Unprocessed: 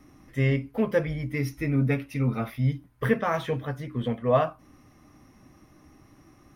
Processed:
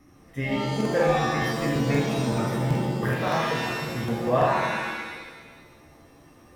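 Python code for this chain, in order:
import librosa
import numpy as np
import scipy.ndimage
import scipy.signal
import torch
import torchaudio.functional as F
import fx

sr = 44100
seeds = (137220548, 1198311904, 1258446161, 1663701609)

y = fx.buffer_crackle(x, sr, first_s=0.76, period_s=0.19, block=2048, kind='repeat')
y = fx.rev_shimmer(y, sr, seeds[0], rt60_s=1.3, semitones=7, shimmer_db=-2, drr_db=0.0)
y = F.gain(torch.from_numpy(y), -2.5).numpy()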